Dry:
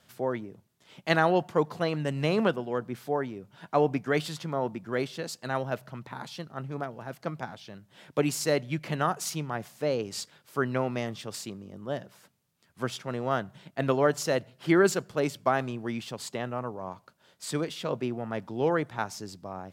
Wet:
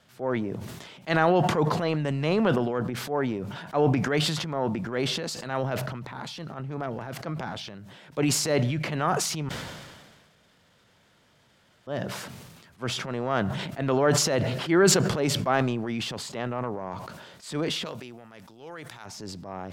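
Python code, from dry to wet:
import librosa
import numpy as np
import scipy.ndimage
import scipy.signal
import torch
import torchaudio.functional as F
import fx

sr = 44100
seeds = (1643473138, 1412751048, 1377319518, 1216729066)

y = fx.pre_emphasis(x, sr, coefficient=0.9, at=(17.84, 19.05), fade=0.02)
y = fx.edit(y, sr, fx.room_tone_fill(start_s=9.49, length_s=2.38), tone=tone)
y = fx.high_shelf(y, sr, hz=8700.0, db=-10.5)
y = fx.transient(y, sr, attack_db=-6, sustain_db=7)
y = fx.sustainer(y, sr, db_per_s=36.0)
y = y * librosa.db_to_amplitude(2.5)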